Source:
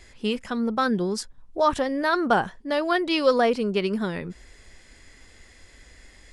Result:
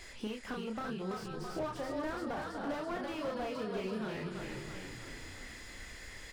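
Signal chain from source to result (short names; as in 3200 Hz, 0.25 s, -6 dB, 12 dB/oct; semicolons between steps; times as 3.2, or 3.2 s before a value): feedback echo 0.24 s, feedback 53%, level -20 dB; compressor 16:1, threshold -35 dBFS, peak gain reduction 21.5 dB; low shelf 460 Hz -6.5 dB; doubler 32 ms -5 dB; on a send: frequency-shifting echo 0.331 s, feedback 60%, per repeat -32 Hz, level -6 dB; on the sum: slew limiter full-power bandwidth 11 Hz; gain +2.5 dB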